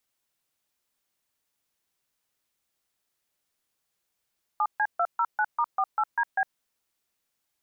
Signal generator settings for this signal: DTMF "7C209*48DB", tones 58 ms, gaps 139 ms, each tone -24 dBFS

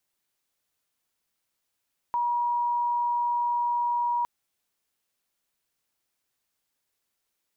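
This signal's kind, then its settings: tone sine 958 Hz -23 dBFS 2.11 s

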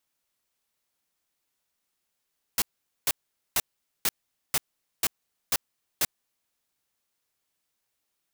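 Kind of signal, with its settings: noise bursts white, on 0.04 s, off 0.45 s, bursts 8, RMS -23.5 dBFS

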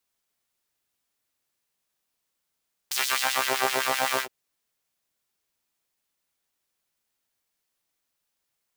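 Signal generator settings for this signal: synth patch with filter wobble C3, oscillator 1 saw, interval +19 st, noise -16.5 dB, filter highpass, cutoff 580 Hz, Q 1.3, filter envelope 2.5 oct, filter decay 0.62 s, filter sustain 40%, attack 7.9 ms, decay 0.63 s, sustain -3.5 dB, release 0.09 s, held 1.28 s, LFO 7.8 Hz, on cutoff 1 oct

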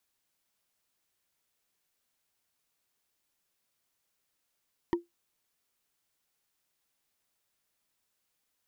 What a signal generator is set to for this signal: wood hit, lowest mode 344 Hz, decay 0.16 s, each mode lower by 6 dB, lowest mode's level -20 dB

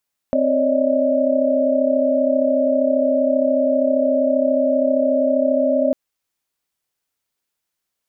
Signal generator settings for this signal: chord C4/C#5/D5/D#5 sine, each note -20 dBFS 5.60 s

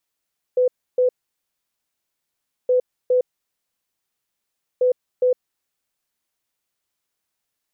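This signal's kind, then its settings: beep pattern sine 502 Hz, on 0.11 s, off 0.30 s, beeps 2, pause 1.60 s, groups 3, -13.5 dBFS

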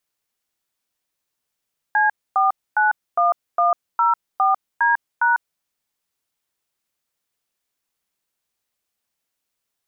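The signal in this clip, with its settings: DTMF "C491104D#", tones 148 ms, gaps 260 ms, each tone -16.5 dBFS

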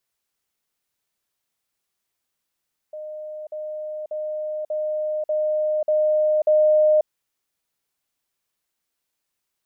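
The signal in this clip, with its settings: level ladder 613 Hz -31 dBFS, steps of 3 dB, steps 7, 0.54 s 0.05 s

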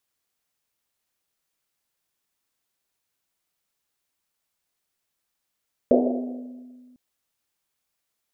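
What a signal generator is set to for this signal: Risset drum length 1.05 s, pitch 250 Hz, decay 1.98 s, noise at 520 Hz, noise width 320 Hz, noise 45%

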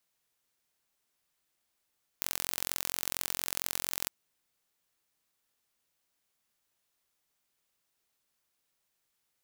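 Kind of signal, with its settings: pulse train 44.3 per s, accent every 2, -3.5 dBFS 1.86 s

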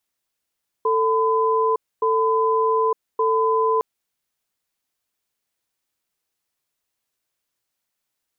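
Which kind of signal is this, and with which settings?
cadence 444 Hz, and 1.01 kHz, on 0.91 s, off 0.26 s, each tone -19 dBFS 2.96 s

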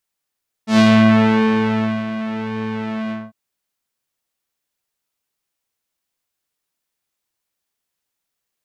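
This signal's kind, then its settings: synth patch with pulse-width modulation A3, interval -12 st, detune 20 cents, sub -13.5 dB, noise -14 dB, filter lowpass, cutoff 1.1 kHz, Q 1, filter envelope 2.5 oct, filter decay 0.39 s, filter sustain 45%, attack 111 ms, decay 1.28 s, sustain -14 dB, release 0.21 s, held 2.44 s, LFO 0.9 Hz, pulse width 42%, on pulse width 10%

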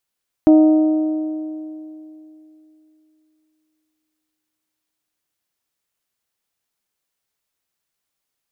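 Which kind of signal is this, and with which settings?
metal hit bell, length 5.69 s, lowest mode 311 Hz, decay 3.12 s, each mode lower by 10 dB, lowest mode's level -6 dB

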